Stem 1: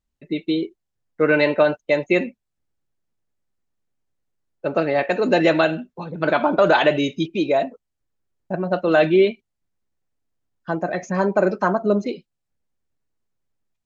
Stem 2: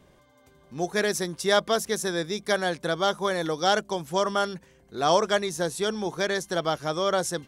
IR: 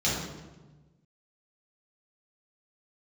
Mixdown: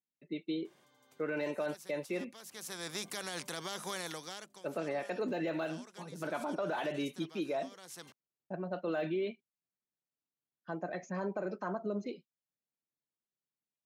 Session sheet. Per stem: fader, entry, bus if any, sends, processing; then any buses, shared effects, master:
-14.5 dB, 0.00 s, no send, de-esser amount 80%
+1.0 dB, 0.65 s, no send, compression 2:1, threshold -40 dBFS, peak gain reduction 13 dB; spectrum-flattening compressor 2:1; auto duck -18 dB, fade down 0.65 s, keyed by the first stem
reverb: none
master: high-pass 130 Hz 24 dB/octave; peak limiter -27 dBFS, peak gain reduction 7.5 dB

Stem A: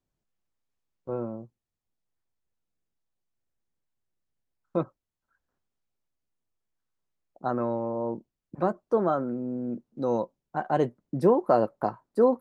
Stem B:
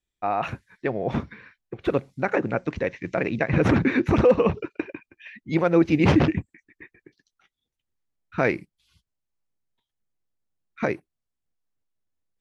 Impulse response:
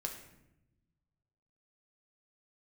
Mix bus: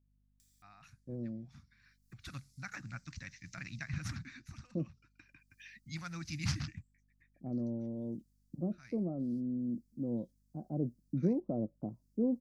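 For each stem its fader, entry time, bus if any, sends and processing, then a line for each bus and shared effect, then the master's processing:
-3.0 dB, 0.00 s, no send, steep low-pass 650 Hz 36 dB/octave
-11.5 dB, 0.40 s, no send, FFT filter 130 Hz 0 dB, 440 Hz -22 dB, 770 Hz -3 dB, 3.1 kHz -4 dB, 4.8 kHz +14 dB; upward compressor, threshold -36 dBFS; auto duck -17 dB, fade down 0.90 s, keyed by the first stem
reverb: none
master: high-order bell 610 Hz -14 dB; hum 50 Hz, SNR 34 dB

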